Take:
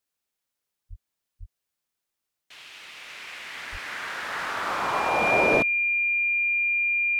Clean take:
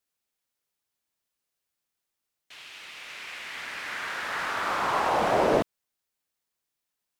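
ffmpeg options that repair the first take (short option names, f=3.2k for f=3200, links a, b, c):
-filter_complex "[0:a]bandreject=f=2.4k:w=30,asplit=3[a][b][c];[a]afade=t=out:st=0.89:d=0.02[d];[b]highpass=f=140:w=0.5412,highpass=f=140:w=1.3066,afade=t=in:st=0.89:d=0.02,afade=t=out:st=1.01:d=0.02[e];[c]afade=t=in:st=1.01:d=0.02[f];[d][e][f]amix=inputs=3:normalize=0,asplit=3[g][h][i];[g]afade=t=out:st=1.39:d=0.02[j];[h]highpass=f=140:w=0.5412,highpass=f=140:w=1.3066,afade=t=in:st=1.39:d=0.02,afade=t=out:st=1.51:d=0.02[k];[i]afade=t=in:st=1.51:d=0.02[l];[j][k][l]amix=inputs=3:normalize=0,asplit=3[m][n][o];[m]afade=t=out:st=3.71:d=0.02[p];[n]highpass=f=140:w=0.5412,highpass=f=140:w=1.3066,afade=t=in:st=3.71:d=0.02,afade=t=out:st=3.83:d=0.02[q];[o]afade=t=in:st=3.83:d=0.02[r];[p][q][r]amix=inputs=3:normalize=0,asetnsamples=n=441:p=0,asendcmd='6.76 volume volume 3dB',volume=0dB"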